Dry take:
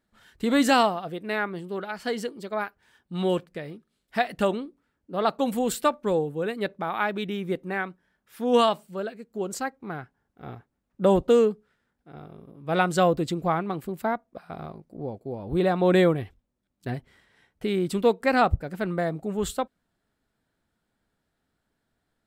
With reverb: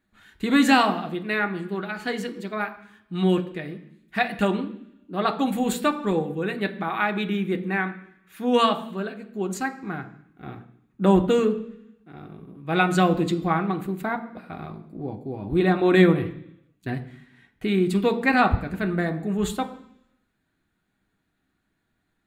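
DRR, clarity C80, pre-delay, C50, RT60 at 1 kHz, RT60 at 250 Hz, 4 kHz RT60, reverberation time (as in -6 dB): 5.5 dB, 16.5 dB, 3 ms, 14.0 dB, 0.70 s, 0.90 s, 0.95 s, 0.70 s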